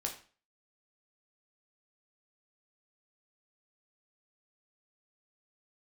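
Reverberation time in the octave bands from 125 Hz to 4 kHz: 0.40, 0.40, 0.40, 0.40, 0.40, 0.35 seconds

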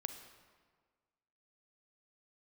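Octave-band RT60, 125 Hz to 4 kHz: 1.6, 1.6, 1.6, 1.6, 1.3, 1.1 seconds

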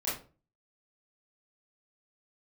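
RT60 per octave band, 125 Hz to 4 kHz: 0.55, 0.45, 0.40, 0.35, 0.25, 0.25 seconds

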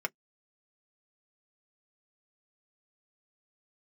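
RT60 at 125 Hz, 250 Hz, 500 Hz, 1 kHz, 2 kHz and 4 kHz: 0.15, 0.10, 0.10, 0.10, 0.10, 0.10 seconds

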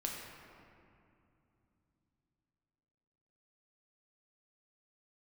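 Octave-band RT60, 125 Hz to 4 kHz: 4.6, 4.2, 2.8, 2.6, 2.1, 1.4 seconds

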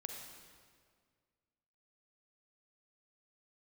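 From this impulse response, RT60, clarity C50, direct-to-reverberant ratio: 1.9 s, 2.5 dB, 2.0 dB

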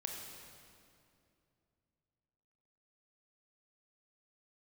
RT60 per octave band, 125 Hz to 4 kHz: 3.5, 3.1, 2.8, 2.4, 2.1, 1.9 seconds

